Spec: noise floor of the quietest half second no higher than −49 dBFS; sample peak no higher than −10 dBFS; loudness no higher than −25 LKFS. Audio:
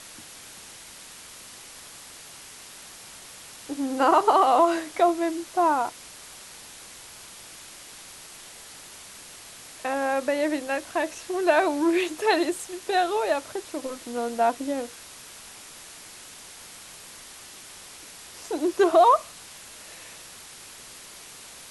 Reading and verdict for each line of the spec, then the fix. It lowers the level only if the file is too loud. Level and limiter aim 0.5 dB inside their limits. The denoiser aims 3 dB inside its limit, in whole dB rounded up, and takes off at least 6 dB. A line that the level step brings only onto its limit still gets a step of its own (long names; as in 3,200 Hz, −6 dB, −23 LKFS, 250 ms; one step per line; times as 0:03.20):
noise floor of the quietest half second −45 dBFS: out of spec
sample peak −8.0 dBFS: out of spec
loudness −24.0 LKFS: out of spec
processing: broadband denoise 6 dB, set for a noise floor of −45 dBFS
level −1.5 dB
brickwall limiter −10.5 dBFS